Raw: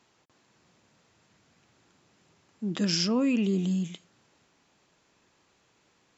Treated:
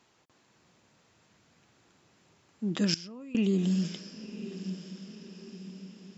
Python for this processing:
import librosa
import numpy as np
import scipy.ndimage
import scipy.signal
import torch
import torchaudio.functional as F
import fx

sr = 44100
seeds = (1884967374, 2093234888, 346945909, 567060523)

y = fx.level_steps(x, sr, step_db=22, at=(2.94, 3.35))
y = fx.echo_diffused(y, sr, ms=1009, feedback_pct=52, wet_db=-11.5)